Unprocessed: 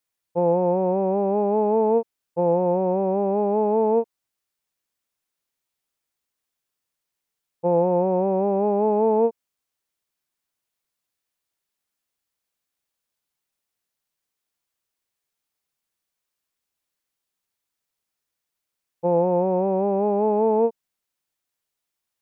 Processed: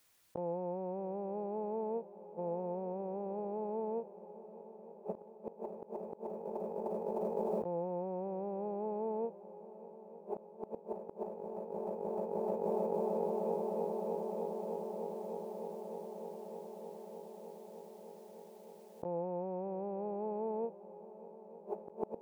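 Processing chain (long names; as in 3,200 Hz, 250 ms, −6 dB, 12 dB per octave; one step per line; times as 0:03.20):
echo machine with several playback heads 305 ms, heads second and third, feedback 72%, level −18 dB
gate with flip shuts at −28 dBFS, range −31 dB
compressor whose output falls as the input rises −46 dBFS, ratio −0.5
level +10.5 dB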